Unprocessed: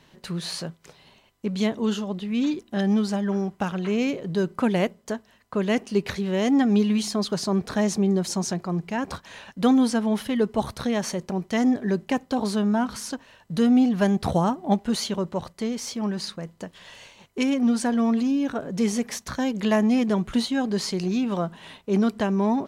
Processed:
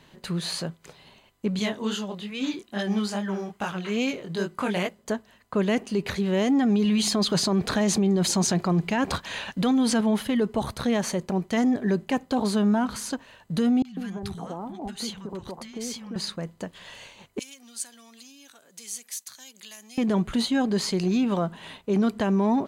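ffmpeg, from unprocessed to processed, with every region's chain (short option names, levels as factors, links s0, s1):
-filter_complex "[0:a]asettb=1/sr,asplit=3[s0][s1][s2];[s0]atrim=end=1.594[s3];[s1]atrim=start=1.59:end=4.99,asetpts=PTS-STARTPTS,afade=t=in:d=0.004:c=qsin,afade=t=out:st=3.396:d=0.004:c=qsin,tiltshelf=f=790:g=-4.5,flanger=delay=18.5:depth=5.9:speed=2.4[s4];[s2]atrim=start=4.986[s5];[s3][s4]acrossfade=d=0.004:c1=hsin:c2=qsin[s6];[s6][s5]acrossfade=d=0.004:c1=qsin:c2=hsin,asettb=1/sr,asplit=3[s7][s8][s9];[s7]atrim=end=6.854[s10];[s8]atrim=start=6.85:end=10.01,asetpts=PTS-STARTPTS,afade=t=in:d=0.004:c=qsin,afade=t=out:st=3.156:d=0.004:c=qsin,equalizer=f=3300:w=0.83:g=4,acontrast=31[s11];[s9]atrim=start=10.006[s12];[s10][s11]acrossfade=d=0.004:c1=hsin:c2=qsin[s13];[s13][s12]acrossfade=d=0.004:c1=qsin:c2=hsin,asettb=1/sr,asplit=3[s14][s15][s16];[s14]atrim=end=13.824[s17];[s15]atrim=start=13.82:end=16.16,asetpts=PTS-STARTPTS,afade=t=in:d=0.004:c=qsin,afade=t=out:st=2.336:d=0.004:c=qsin,acompressor=threshold=0.0282:ratio=5:attack=3.2:release=140:knee=1:detection=peak,bandreject=f=600:w=8.9,acrossover=split=180|1200[s18][s19][s20];[s20]adelay=30[s21];[s19]adelay=150[s22];[s18][s22][s21]amix=inputs=3:normalize=0,atrim=end_sample=103194[s23];[s16]atrim=start=16.156[s24];[s17][s23]acrossfade=d=0.004:c1=hsin:c2=qsin[s25];[s25][s24]acrossfade=d=0.004:c1=qsin:c2=hsin,asettb=1/sr,asplit=3[s26][s27][s28];[s26]atrim=end=17.394[s29];[s27]atrim=start=17.39:end=19.98,asetpts=PTS-STARTPTS,afade=t=in:d=0.004:c=qsin,afade=t=out:st=2.586:d=0.004:c=qsin,aderivative,acrossover=split=170|3000[s30][s31][s32];[s31]acompressor=threshold=0.00178:ratio=3:attack=3.2:release=140:knee=2.83:detection=peak[s33];[s30][s33][s32]amix=inputs=3:normalize=0[s34];[s28]atrim=start=19.976[s35];[s29][s34]acrossfade=d=0.004:c1=hsin:c2=qsin[s36];[s36][s35]acrossfade=d=0.004:c1=qsin:c2=hsin,bandreject=f=5500:w=8.6,alimiter=limit=0.133:level=0:latency=1:release=20,volume=1.19"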